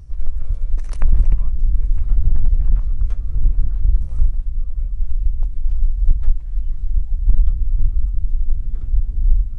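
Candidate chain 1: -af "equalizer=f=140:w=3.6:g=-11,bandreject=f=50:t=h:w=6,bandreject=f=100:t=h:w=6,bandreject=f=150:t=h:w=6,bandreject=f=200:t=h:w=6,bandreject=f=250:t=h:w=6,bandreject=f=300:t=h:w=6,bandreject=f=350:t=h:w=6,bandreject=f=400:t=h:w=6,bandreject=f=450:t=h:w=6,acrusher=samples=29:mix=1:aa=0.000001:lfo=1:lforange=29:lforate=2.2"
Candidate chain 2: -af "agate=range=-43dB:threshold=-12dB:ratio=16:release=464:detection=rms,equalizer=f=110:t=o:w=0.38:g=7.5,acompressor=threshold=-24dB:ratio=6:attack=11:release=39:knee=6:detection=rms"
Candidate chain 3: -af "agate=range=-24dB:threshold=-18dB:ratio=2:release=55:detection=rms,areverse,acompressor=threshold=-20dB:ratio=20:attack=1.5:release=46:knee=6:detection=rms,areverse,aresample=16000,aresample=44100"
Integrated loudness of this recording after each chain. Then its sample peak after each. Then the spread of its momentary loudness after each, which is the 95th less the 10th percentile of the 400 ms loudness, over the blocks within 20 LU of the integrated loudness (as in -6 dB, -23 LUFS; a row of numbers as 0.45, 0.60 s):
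-24.0, -34.0, -33.0 LUFS; -1.5, -14.5, -17.0 dBFS; 7, 6, 3 LU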